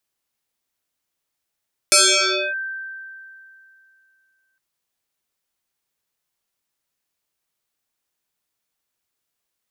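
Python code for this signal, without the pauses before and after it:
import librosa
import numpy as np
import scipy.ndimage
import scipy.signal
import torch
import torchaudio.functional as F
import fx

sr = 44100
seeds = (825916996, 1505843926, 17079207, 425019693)

y = fx.fm2(sr, length_s=2.66, level_db=-9, carrier_hz=1560.0, ratio=0.62, index=9.1, index_s=0.62, decay_s=2.68, shape='linear')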